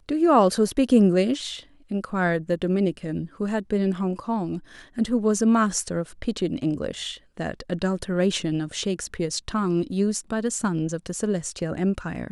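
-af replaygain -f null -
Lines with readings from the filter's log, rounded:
track_gain = +3.3 dB
track_peak = 0.346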